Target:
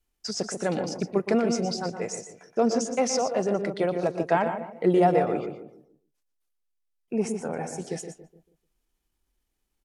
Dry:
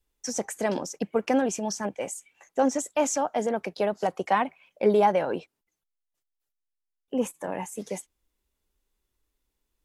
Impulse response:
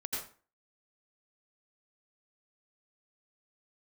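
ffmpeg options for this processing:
-filter_complex "[0:a]asplit=2[a][b];[b]adelay=147,lowpass=f=1k:p=1,volume=-6.5dB,asplit=2[c][d];[d]adelay=147,lowpass=f=1k:p=1,volume=0.37,asplit=2[e][f];[f]adelay=147,lowpass=f=1k:p=1,volume=0.37,asplit=2[g][h];[h]adelay=147,lowpass=f=1k:p=1,volume=0.37[i];[c][e][g][i]amix=inputs=4:normalize=0[j];[a][j]amix=inputs=2:normalize=0,asetrate=38170,aresample=44100,atempo=1.15535,asplit=2[k][l];[l]aecho=0:1:119:0.299[m];[k][m]amix=inputs=2:normalize=0"

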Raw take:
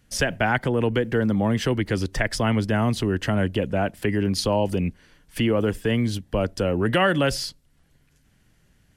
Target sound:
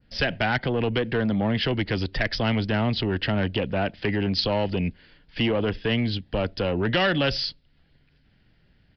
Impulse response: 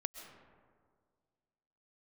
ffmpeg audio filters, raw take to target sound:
-af "equalizer=f=1.1k:t=o:w=0.37:g=-5.5,aresample=11025,asoftclip=type=tanh:threshold=-17dB,aresample=44100,adynamicequalizer=threshold=0.00708:dfrequency=3300:dqfactor=0.85:tfrequency=3300:tqfactor=0.85:attack=5:release=100:ratio=0.375:range=3:mode=boostabove:tftype=bell"

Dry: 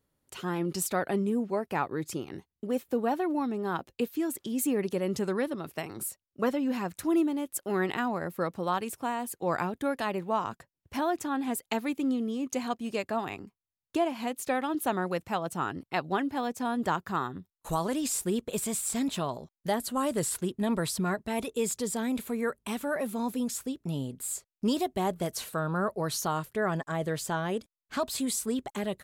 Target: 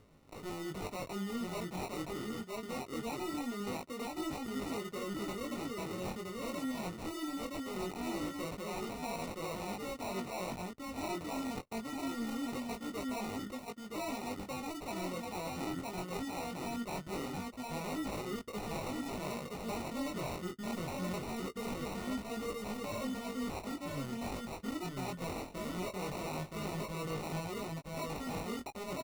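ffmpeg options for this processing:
-filter_complex "[0:a]areverse,acompressor=threshold=-40dB:ratio=4,areverse,aecho=1:1:971:0.708,acrossover=split=2000[a][b];[a]acompressor=mode=upward:threshold=-55dB:ratio=2.5[c];[c][b]amix=inputs=2:normalize=0,acrusher=samples=27:mix=1:aa=0.000001,asoftclip=type=tanh:threshold=-37dB,flanger=delay=19:depth=3.8:speed=0.22,volume=6.5dB"

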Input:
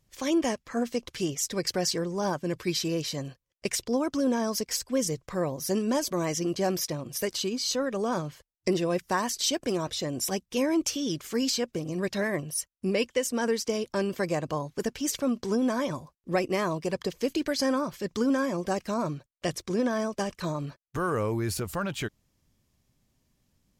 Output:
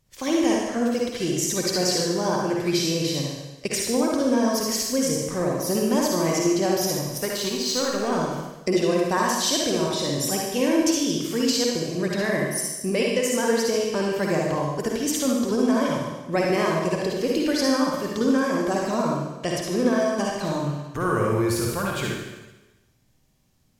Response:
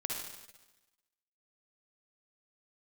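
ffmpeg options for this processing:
-filter_complex "[0:a]asettb=1/sr,asplit=3[a][b][c];[a]atrim=end=6.964[d];[b]atrim=start=6.96:end=8.1,asetpts=PTS-STARTPTS,afade=t=in:d=0.004:c=qsin,afade=t=out:st=1.136:d=0.004:c=qsin,aeval=exprs='0.168*(cos(1*acos(clip(val(0)/0.168,-1,1)))-cos(1*PI/2))+0.0106*(cos(7*acos(clip(val(0)/0.168,-1,1)))-cos(7*PI/2))':c=same[e];[c]atrim=start=8.096[f];[d][e]acrossfade=d=0.004:c1=hsin:c2=qsin[g];[g][f]acrossfade=d=0.004:c1=qsin:c2=hsin[h];[1:a]atrim=start_sample=2205[i];[h][i]afir=irnorm=-1:irlink=0,volume=3.5dB"

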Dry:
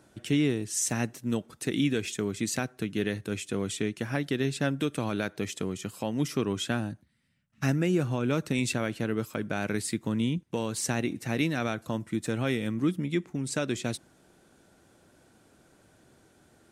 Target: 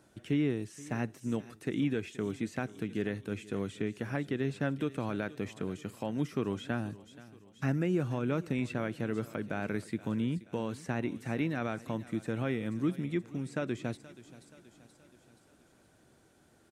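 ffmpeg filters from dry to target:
-filter_complex "[0:a]aecho=1:1:477|954|1431|1908:0.106|0.0561|0.0298|0.0158,acrossover=split=2500[a][b];[b]acompressor=threshold=-50dB:ratio=4:attack=1:release=60[c];[a][c]amix=inputs=2:normalize=0,volume=-4dB"

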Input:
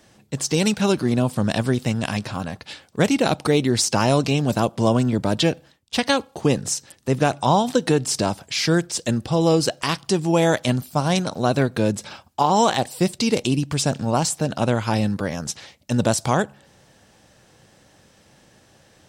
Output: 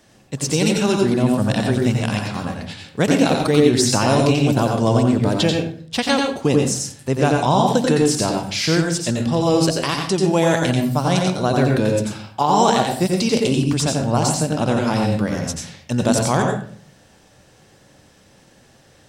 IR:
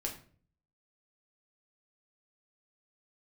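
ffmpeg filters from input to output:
-filter_complex "[0:a]asplit=2[a][b];[1:a]atrim=start_sample=2205,asetrate=39249,aresample=44100,adelay=88[c];[b][c]afir=irnorm=-1:irlink=0,volume=-3dB[d];[a][d]amix=inputs=2:normalize=0"

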